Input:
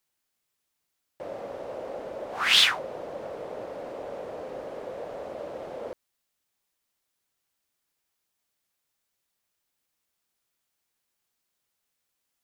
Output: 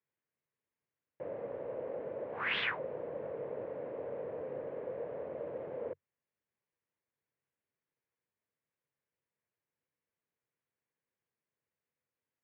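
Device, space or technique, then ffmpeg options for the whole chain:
bass cabinet: -af "highpass=81,equalizer=f=94:t=q:w=4:g=5,equalizer=f=140:t=q:w=4:g=7,equalizer=f=470:t=q:w=4:g=6,equalizer=f=760:t=q:w=4:g=-6,equalizer=f=1300:t=q:w=4:g=-6,lowpass=f=2200:w=0.5412,lowpass=f=2200:w=1.3066,volume=0.531"

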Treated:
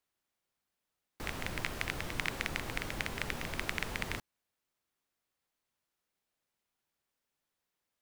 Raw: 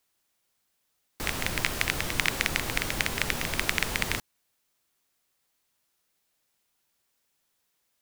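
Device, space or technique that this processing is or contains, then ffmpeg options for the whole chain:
behind a face mask: -af "highshelf=f=3400:g=-8,volume=0.473"

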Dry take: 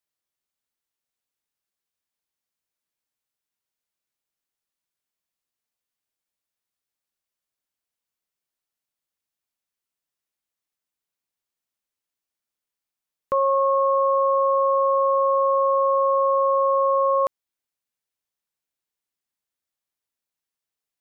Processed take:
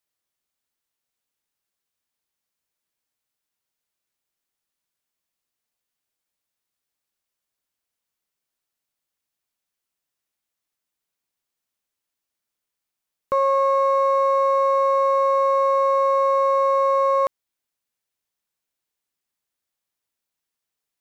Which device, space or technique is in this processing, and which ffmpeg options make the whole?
parallel distortion: -filter_complex "[0:a]asplit=2[s0][s1];[s1]asoftclip=type=hard:threshold=0.0316,volume=0.473[s2];[s0][s2]amix=inputs=2:normalize=0"

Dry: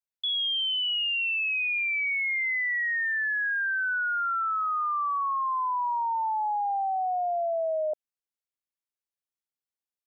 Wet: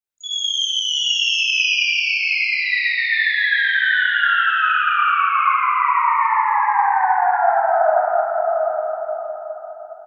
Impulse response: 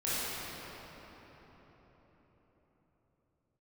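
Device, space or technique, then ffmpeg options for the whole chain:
shimmer-style reverb: -filter_complex "[0:a]asettb=1/sr,asplit=3[s0][s1][s2];[s0]atrim=end=1.894[s3];[s1]atrim=start=1.89:end=2.62,asetpts=PTS-STARTPTS,afade=t=in:d=0.004:c=qsin,afade=t=out:st=0.726:d=0.004:c=qsin,tiltshelf=f=730:g=7[s4];[s2]atrim=start=2.616[s5];[s3][s4]acrossfade=d=0.004:c1=hsin:c2=qsin[s6];[s6][s5]acrossfade=d=0.004:c1=qsin:c2=hsin,asplit=2[s7][s8];[s8]asetrate=88200,aresample=44100,atempo=0.5,volume=0.282[s9];[s7][s9]amix=inputs=2:normalize=0[s10];[1:a]atrim=start_sample=2205[s11];[s10][s11]afir=irnorm=-1:irlink=0,aecho=1:1:710:0.668"

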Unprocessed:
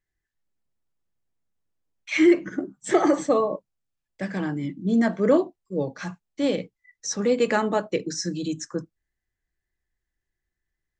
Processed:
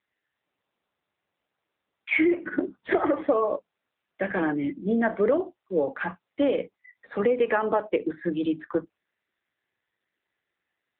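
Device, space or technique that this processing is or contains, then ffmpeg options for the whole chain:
voicemail: -af "highpass=370,lowpass=2700,acompressor=threshold=0.0447:ratio=10,volume=2.66" -ar 8000 -c:a libopencore_amrnb -b:a 7400

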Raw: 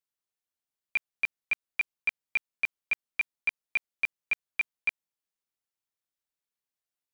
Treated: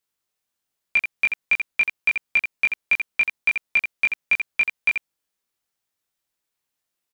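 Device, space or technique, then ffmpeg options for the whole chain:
slapback doubling: -filter_complex "[0:a]asplit=3[s0][s1][s2];[s1]adelay=21,volume=0.708[s3];[s2]adelay=84,volume=0.473[s4];[s0][s3][s4]amix=inputs=3:normalize=0,volume=2.37"

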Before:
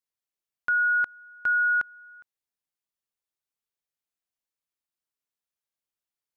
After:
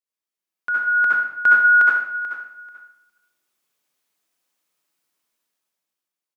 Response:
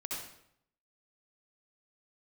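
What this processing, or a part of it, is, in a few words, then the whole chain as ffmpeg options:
far laptop microphone: -filter_complex "[1:a]atrim=start_sample=2205[s0];[0:a][s0]afir=irnorm=-1:irlink=0,highpass=170,dynaudnorm=f=220:g=9:m=5.62,asettb=1/sr,asplit=3[s1][s2][s3];[s1]atrim=end=1.724[s4];[s2]atrim=start=1.72:end=2.14,asetpts=PTS-STARTPTS,afade=t=in:d=0.004:c=qsin,afade=t=out:st=0.416:d=0.004:c=qsin,highpass=280[s5];[s3]atrim=start=2.136[s6];[s4][s5]acrossfade=d=0.004:c1=hsin:c2=qsin[s7];[s7][s6]acrossfade=d=0.004:c1=qsin:c2=hsin,aecho=1:1:437|874:0.224|0.0425"

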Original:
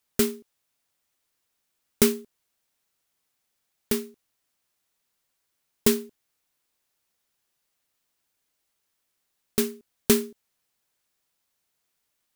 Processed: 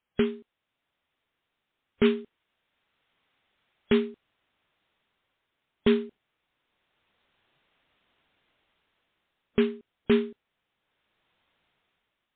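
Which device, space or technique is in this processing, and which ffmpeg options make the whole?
low-bitrate web radio: -filter_complex "[0:a]asettb=1/sr,asplit=3[s0][s1][s2];[s0]atrim=end=2.044[s3];[s1]atrim=start=2.04:end=3.93,asetpts=PTS-STARTPTS,afade=t=in:d=0.004:c=qsin,afade=t=out:st=1.886:d=0.004:c=qsin,equalizer=f=2200:t=o:w=2.6:g=2.5[s4];[s2]atrim=start=3.926[s5];[s3][s4]acrossfade=d=0.004:c1=hsin:c2=qsin[s6];[s6][s5]acrossfade=d=0.004:c1=qsin:c2=hsin,dynaudnorm=f=190:g=9:m=4.47,alimiter=limit=0.422:level=0:latency=1:release=26" -ar 8000 -c:a libmp3lame -b:a 24k

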